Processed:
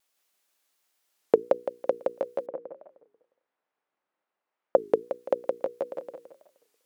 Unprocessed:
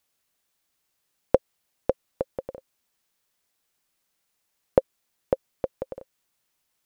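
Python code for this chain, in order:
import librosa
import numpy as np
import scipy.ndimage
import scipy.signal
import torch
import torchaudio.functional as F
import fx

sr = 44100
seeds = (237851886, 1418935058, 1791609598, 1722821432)

y = scipy.signal.sosfilt(scipy.signal.butter(2, 320.0, 'highpass', fs=sr, output='sos'), x)
y = fx.hum_notches(y, sr, base_hz=60, count=8)
y = fx.echo_feedback(y, sr, ms=166, feedback_pct=37, wet_db=-3)
y = fx.vibrato(y, sr, rate_hz=1.4, depth_cents=26.0)
y = fx.lowpass(y, sr, hz=1400.0, slope=12, at=(2.46, 4.78))
y = fx.record_warp(y, sr, rpm=33.33, depth_cents=250.0)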